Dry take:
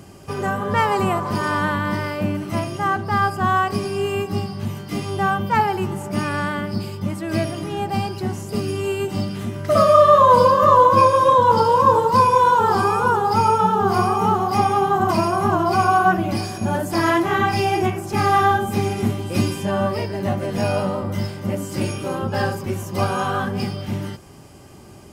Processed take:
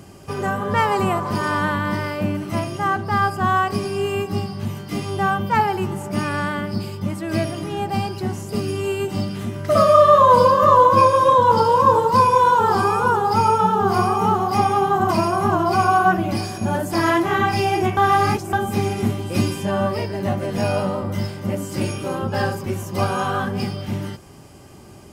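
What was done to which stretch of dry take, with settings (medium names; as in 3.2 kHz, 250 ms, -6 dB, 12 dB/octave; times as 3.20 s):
17.97–18.53 s: reverse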